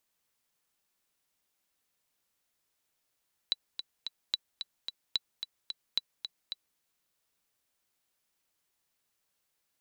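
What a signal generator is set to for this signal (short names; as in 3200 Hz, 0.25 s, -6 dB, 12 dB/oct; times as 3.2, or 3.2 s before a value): metronome 220 bpm, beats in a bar 3, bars 4, 3950 Hz, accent 8.5 dB -14.5 dBFS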